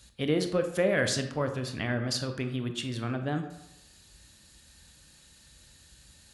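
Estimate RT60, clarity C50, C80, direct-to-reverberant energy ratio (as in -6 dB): 0.90 s, 9.0 dB, 11.5 dB, 6.5 dB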